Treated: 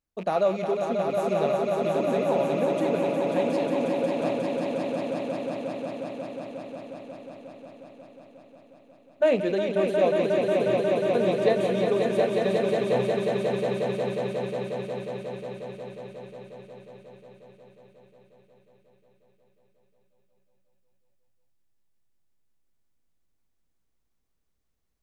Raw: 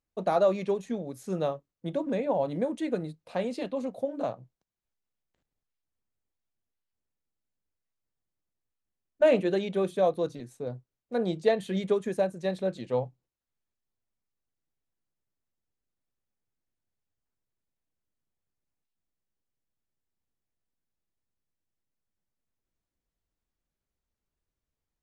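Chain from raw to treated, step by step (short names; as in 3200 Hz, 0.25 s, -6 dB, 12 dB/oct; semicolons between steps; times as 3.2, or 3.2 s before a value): rattling part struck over -39 dBFS, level -35 dBFS; on a send: swelling echo 0.18 s, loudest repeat 5, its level -5.5 dB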